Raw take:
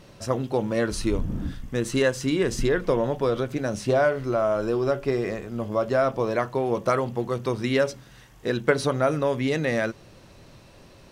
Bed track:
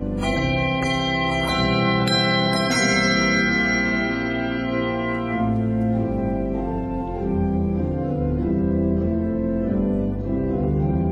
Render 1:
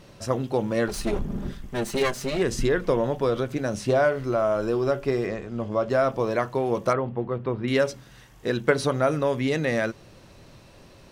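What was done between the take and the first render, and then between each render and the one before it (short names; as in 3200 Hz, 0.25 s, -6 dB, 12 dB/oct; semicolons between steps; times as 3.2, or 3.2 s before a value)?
0.88–2.42 minimum comb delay 5 ms; 5.26–5.9 air absorption 57 m; 6.93–7.68 air absorption 480 m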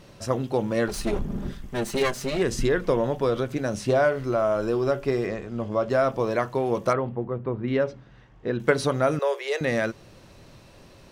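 7.15–8.6 tape spacing loss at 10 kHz 29 dB; 9.19–9.61 steep high-pass 380 Hz 72 dB/oct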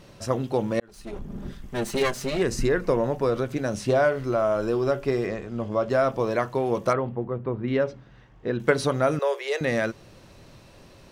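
0.8–1.83 fade in; 2.46–3.44 bell 3300 Hz -11.5 dB 0.21 oct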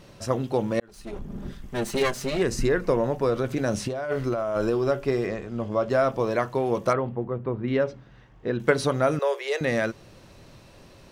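3.41–4.7 negative-ratio compressor -26 dBFS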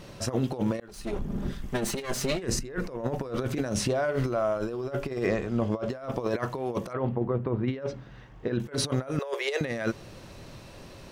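negative-ratio compressor -28 dBFS, ratio -0.5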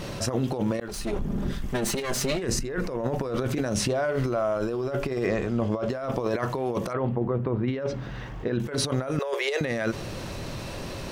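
fast leveller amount 50%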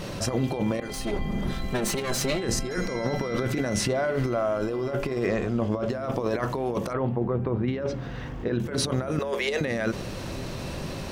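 add bed track -18.5 dB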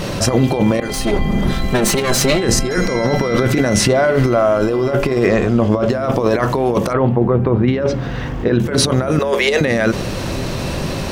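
gain +12 dB; limiter -3 dBFS, peak gain reduction 3 dB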